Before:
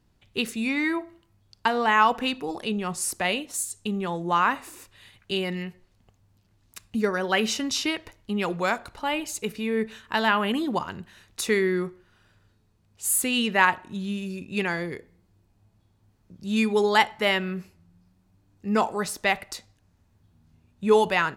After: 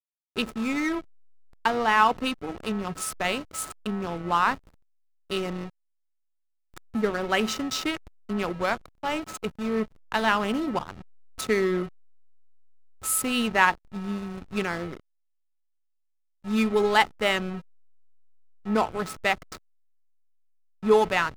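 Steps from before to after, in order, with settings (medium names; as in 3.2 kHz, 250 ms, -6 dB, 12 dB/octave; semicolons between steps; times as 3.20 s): whistle 1.3 kHz -36 dBFS; hysteresis with a dead band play -24.5 dBFS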